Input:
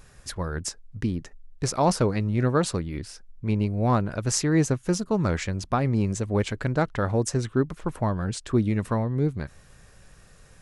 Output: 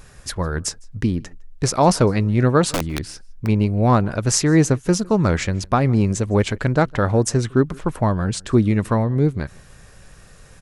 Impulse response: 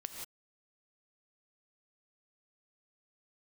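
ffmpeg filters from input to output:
-filter_complex "[0:a]asplit=3[link_01][link_02][link_03];[link_01]afade=type=out:start_time=2.72:duration=0.02[link_04];[link_02]aeval=exprs='(mod(11.2*val(0)+1,2)-1)/11.2':channel_layout=same,afade=type=in:start_time=2.72:duration=0.02,afade=type=out:start_time=3.45:duration=0.02[link_05];[link_03]afade=type=in:start_time=3.45:duration=0.02[link_06];[link_04][link_05][link_06]amix=inputs=3:normalize=0,asplit=2[link_07][link_08];[link_08]adelay=157.4,volume=-26dB,highshelf=frequency=4000:gain=-3.54[link_09];[link_07][link_09]amix=inputs=2:normalize=0,volume=6.5dB"

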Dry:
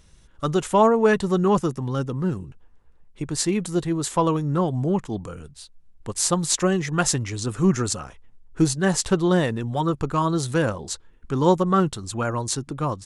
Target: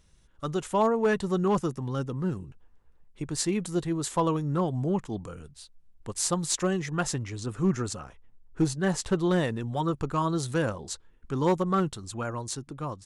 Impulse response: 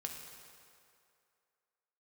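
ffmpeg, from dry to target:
-filter_complex "[0:a]dynaudnorm=framelen=120:gausssize=17:maxgain=3.5dB,asettb=1/sr,asplit=3[link_01][link_02][link_03];[link_01]atrim=end=6.934[link_04];[link_02]atrim=start=6.93:end=9.16,asetpts=PTS-STARTPTS,afade=type=in:duration=0.004:curve=qsin,afade=type=out:start_time=2.226:duration=0.004:curve=qsin,highshelf=frequency=3500:gain=-5.5[link_05];[link_03]atrim=start=9.156[link_06];[link_04][link_05]acrossfade=duration=0.004:curve1=hsin:curve2=qsin[link_07];[link_07][link_06]acrossfade=duration=0.004:curve1=qsin:curve2=hsin,asoftclip=type=hard:threshold=-8.5dB,volume=-8dB"

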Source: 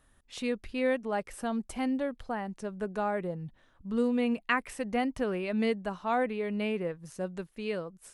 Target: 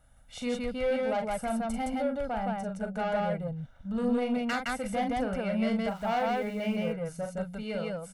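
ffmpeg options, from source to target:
ffmpeg -i in.wav -filter_complex "[0:a]highshelf=frequency=2200:gain=-9.5,aecho=1:1:1.4:0.92,asoftclip=type=tanh:threshold=-25.5dB,crystalizer=i=1:c=0,asettb=1/sr,asplit=3[link_01][link_02][link_03];[link_01]atrim=end=5.884[link_04];[link_02]atrim=start=5.88:end=6.76,asetpts=PTS-STARTPTS,afade=type=in:duration=0.004:curve=qsin,afade=type=out:start_time=0.876:duration=0.004:curve=qsin,aeval=exprs='val(0)*gte(abs(val(0)),0.00335)':channel_layout=same[link_05];[link_03]atrim=start=6.756[link_06];[link_04][link_05]acrossfade=duration=0.004:curve1=hsin:curve2=qsin[link_07];[link_07][link_06]acrossfade=duration=0.004:curve1=qsin:curve2=hsin,aecho=1:1:40.82|166.2:0.501|0.891" out.wav

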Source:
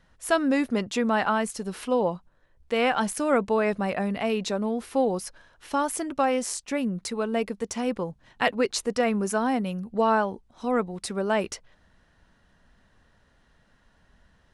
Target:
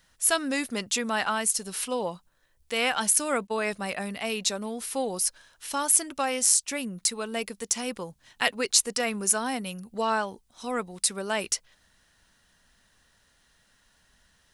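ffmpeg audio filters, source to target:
ffmpeg -i in.wav -filter_complex "[0:a]asettb=1/sr,asplit=3[link_01][link_02][link_03];[link_01]atrim=end=3.474[link_04];[link_02]atrim=start=3.47:end=4.45,asetpts=PTS-STARTPTS,afade=type=in:duration=0.004:curve=qsin,afade=type=out:start_time=0.976:duration=0.004:curve=qsin,agate=range=-33dB:threshold=-27dB:ratio=3:detection=peak[link_05];[link_03]atrim=start=4.446[link_06];[link_04][link_05]acrossfade=duration=0.004:curve1=hsin:curve2=qsin[link_07];[link_07][link_06]acrossfade=duration=0.004:curve1=qsin:curve2=hsin,crystalizer=i=8:c=0,volume=-7.5dB" out.wav

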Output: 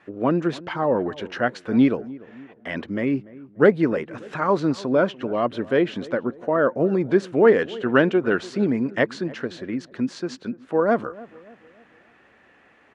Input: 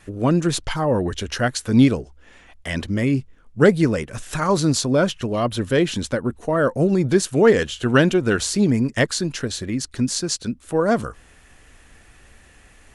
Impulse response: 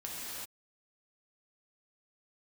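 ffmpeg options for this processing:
-filter_complex "[0:a]highpass=240,lowpass=2100,asplit=2[link_01][link_02];[link_02]adelay=292,lowpass=frequency=1100:poles=1,volume=-19dB,asplit=2[link_03][link_04];[link_04]adelay=292,lowpass=frequency=1100:poles=1,volume=0.47,asplit=2[link_05][link_06];[link_06]adelay=292,lowpass=frequency=1100:poles=1,volume=0.47,asplit=2[link_07][link_08];[link_08]adelay=292,lowpass=frequency=1100:poles=1,volume=0.47[link_09];[link_01][link_03][link_05][link_07][link_09]amix=inputs=5:normalize=0"

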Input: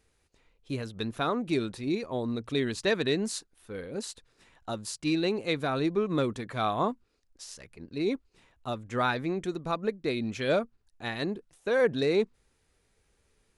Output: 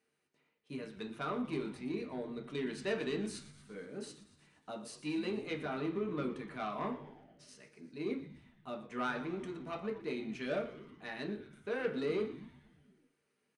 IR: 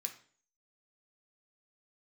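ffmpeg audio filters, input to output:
-filter_complex "[0:a]highpass=160,aemphasis=mode=reproduction:type=75fm,asettb=1/sr,asplit=3[link_01][link_02][link_03];[link_01]atrim=end=5.314[link_04];[link_02]atrim=start=5.31:end=7.48,asetpts=PTS-STARTPTS,afade=type=in:duration=0.004:curve=qsin,afade=type=out:start_time=2.166:duration=0.004:curve=qsin,acrossover=split=4500[link_05][link_06];[link_06]acompressor=threshold=-59dB:ratio=4:attack=1:release=60[link_07];[link_05][link_07]amix=inputs=2:normalize=0[link_08];[link_03]atrim=start=7.476[link_09];[link_04][link_08]acrossfade=duration=0.004:curve1=hsin:curve2=qsin[link_10];[link_10][link_09]acrossfade=duration=0.004:curve1=qsin:curve2=hsin,asoftclip=type=tanh:threshold=-20dB,asplit=8[link_11][link_12][link_13][link_14][link_15][link_16][link_17][link_18];[link_12]adelay=118,afreqshift=-100,volume=-14.5dB[link_19];[link_13]adelay=236,afreqshift=-200,volume=-18.4dB[link_20];[link_14]adelay=354,afreqshift=-300,volume=-22.3dB[link_21];[link_15]adelay=472,afreqshift=-400,volume=-26.1dB[link_22];[link_16]adelay=590,afreqshift=-500,volume=-30dB[link_23];[link_17]adelay=708,afreqshift=-600,volume=-33.9dB[link_24];[link_18]adelay=826,afreqshift=-700,volume=-37.8dB[link_25];[link_11][link_19][link_20][link_21][link_22][link_23][link_24][link_25]amix=inputs=8:normalize=0[link_26];[1:a]atrim=start_sample=2205,asetrate=52920,aresample=44100[link_27];[link_26][link_27]afir=irnorm=-1:irlink=0,volume=-1dB"

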